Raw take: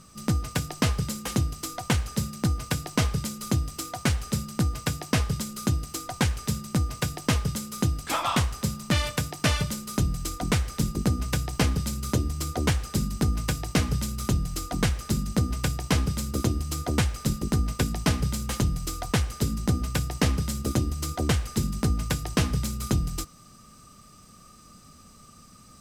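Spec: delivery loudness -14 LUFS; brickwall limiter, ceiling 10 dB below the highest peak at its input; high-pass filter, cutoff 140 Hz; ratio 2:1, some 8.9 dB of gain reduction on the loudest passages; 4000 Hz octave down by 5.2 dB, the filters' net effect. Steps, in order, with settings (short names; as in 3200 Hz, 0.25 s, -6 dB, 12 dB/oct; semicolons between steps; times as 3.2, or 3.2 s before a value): HPF 140 Hz; bell 4000 Hz -7 dB; compressor 2:1, threshold -38 dBFS; gain +26 dB; limiter -1 dBFS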